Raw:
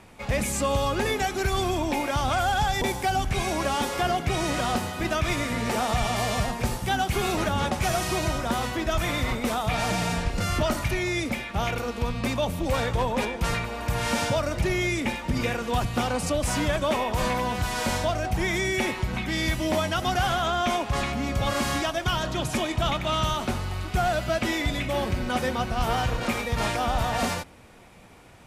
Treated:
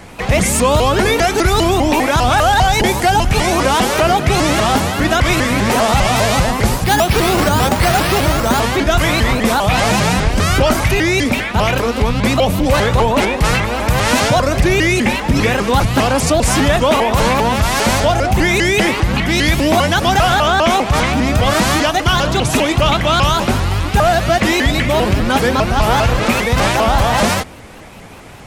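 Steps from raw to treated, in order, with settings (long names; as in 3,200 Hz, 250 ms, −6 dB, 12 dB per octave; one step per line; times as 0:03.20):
in parallel at 0 dB: brickwall limiter −22.5 dBFS, peak gain reduction 8.5 dB
0:06.84–0:08.61: on the sum: bad sample-rate conversion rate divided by 6×, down none, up hold
pitch modulation by a square or saw wave saw up 5 Hz, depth 250 cents
level +8.5 dB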